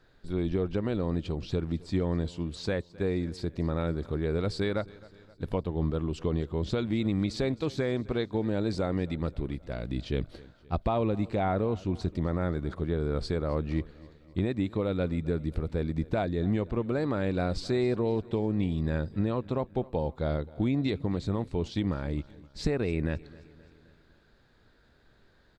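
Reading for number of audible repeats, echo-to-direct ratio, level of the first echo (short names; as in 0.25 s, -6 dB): 3, -20.0 dB, -21.5 dB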